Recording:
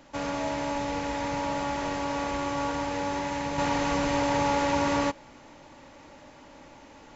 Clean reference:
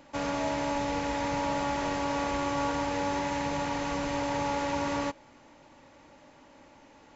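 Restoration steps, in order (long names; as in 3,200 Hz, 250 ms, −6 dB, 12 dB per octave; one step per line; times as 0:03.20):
downward expander −43 dBFS, range −21 dB
level 0 dB, from 0:03.58 −5 dB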